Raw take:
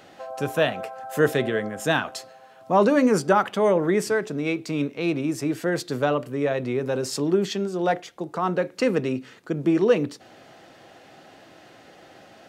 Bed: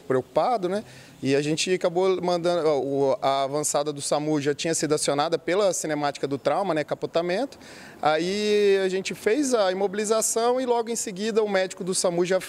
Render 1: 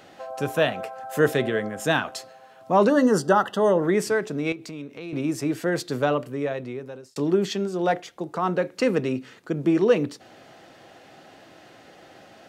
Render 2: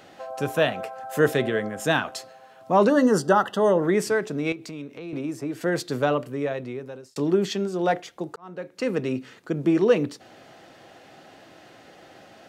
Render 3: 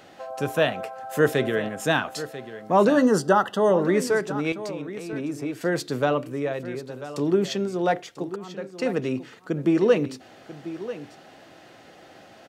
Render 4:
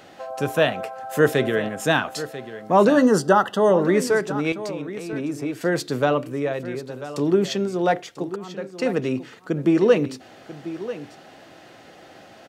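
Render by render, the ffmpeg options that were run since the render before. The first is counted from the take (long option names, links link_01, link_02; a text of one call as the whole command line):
ffmpeg -i in.wav -filter_complex "[0:a]asettb=1/sr,asplit=3[link_01][link_02][link_03];[link_01]atrim=end=2.894[link_04];[link_02]atrim=start=2.89:end=3.82,asetpts=PTS-STARTPTS,afade=type=in:duration=0.004:curve=qsin,afade=type=out:start_time=0.926:duration=0.004:curve=qsin,asuperstop=centerf=2300:order=20:qfactor=3.6[link_05];[link_03]atrim=start=3.816[link_06];[link_04][link_05]acrossfade=duration=0.004:curve1=hsin:curve2=qsin[link_07];[link_07][link_06]acrossfade=duration=0.004:curve1=qsin:curve2=hsin,asettb=1/sr,asplit=3[link_08][link_09][link_10];[link_08]atrim=end=4.524[link_11];[link_09]atrim=start=4.52:end=5.13,asetpts=PTS-STARTPTS,afade=type=in:duration=0.004:curve=qsin,afade=type=out:start_time=0.606:duration=0.004:curve=qsin,acompressor=threshold=-36dB:ratio=3:attack=3.2:release=140:knee=1:detection=peak[link_12];[link_10]atrim=start=5.126[link_13];[link_11][link_12]acrossfade=duration=0.004:curve1=hsin:curve2=qsin[link_14];[link_14][link_13]acrossfade=duration=0.004:curve1=qsin:curve2=hsin,asplit=2[link_15][link_16];[link_15]atrim=end=7.16,asetpts=PTS-STARTPTS,afade=type=out:start_time=6.14:duration=1.02[link_17];[link_16]atrim=start=7.16,asetpts=PTS-STARTPTS,afade=type=in:duration=0.004:curve=hsin[link_18];[link_17][link_18]concat=n=2:v=0:a=1" out.wav
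ffmpeg -i in.wav -filter_complex "[0:a]asettb=1/sr,asplit=3[link_01][link_02][link_03];[link_01]atrim=end=4.964[link_04];[link_02]atrim=start=4.96:end=5.61,asetpts=PTS-STARTPTS,afade=type=in:duration=0.004:curve=qsin,afade=type=out:start_time=0.646:duration=0.004:curve=qsin,acrossover=split=240|1500[link_05][link_06][link_07];[link_05]acompressor=threshold=-38dB:ratio=4[link_08];[link_06]acompressor=threshold=-29dB:ratio=4[link_09];[link_07]acompressor=threshold=-47dB:ratio=4[link_10];[link_08][link_09][link_10]amix=inputs=3:normalize=0[link_11];[link_03]atrim=start=5.606[link_12];[link_04][link_11]acrossfade=duration=0.004:curve1=hsin:curve2=qsin[link_13];[link_13][link_12]acrossfade=duration=0.004:curve1=qsin:curve2=hsin,asplit=2[link_14][link_15];[link_14]atrim=end=8.36,asetpts=PTS-STARTPTS,afade=type=out:start_time=8.356:duration=0.004:curve=hsin[link_16];[link_15]atrim=start=8.36,asetpts=PTS-STARTPTS,afade=type=in:duration=0.82[link_17];[link_16][link_17]concat=n=2:v=0:a=1" out.wav
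ffmpeg -i in.wav -af "aecho=1:1:991:0.2" out.wav
ffmpeg -i in.wav -af "volume=2.5dB" out.wav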